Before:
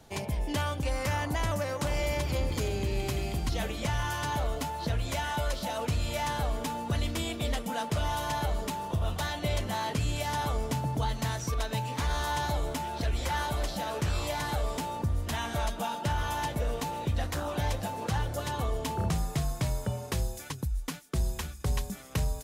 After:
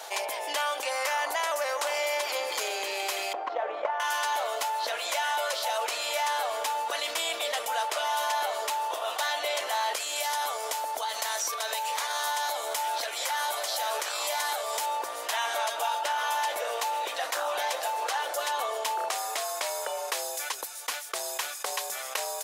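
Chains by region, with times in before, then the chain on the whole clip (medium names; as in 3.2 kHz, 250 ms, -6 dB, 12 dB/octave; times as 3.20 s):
3.33–4.00 s: Butterworth band-pass 510 Hz, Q 0.53 + transient shaper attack +11 dB, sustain +4 dB
9.94–14.86 s: treble shelf 5.5 kHz +7.5 dB + compression, threshold -30 dBFS + band-stop 2.7 kHz, Q 27
whole clip: inverse Chebyshev high-pass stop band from 170 Hz, stop band 60 dB; level flattener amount 50%; trim +3.5 dB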